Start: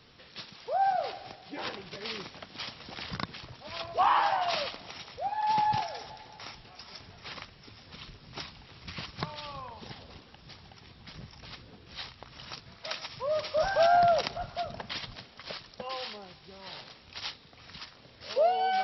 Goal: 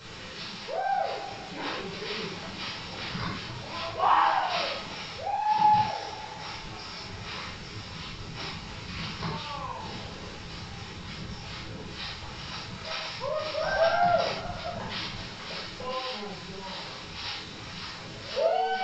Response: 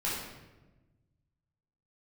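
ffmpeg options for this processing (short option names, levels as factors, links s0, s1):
-filter_complex "[0:a]aeval=exprs='val(0)+0.5*0.0119*sgn(val(0))':c=same[s0];[1:a]atrim=start_sample=2205,atrim=end_sample=6174[s1];[s0][s1]afir=irnorm=-1:irlink=0,aresample=16000,aresample=44100,volume=0.596"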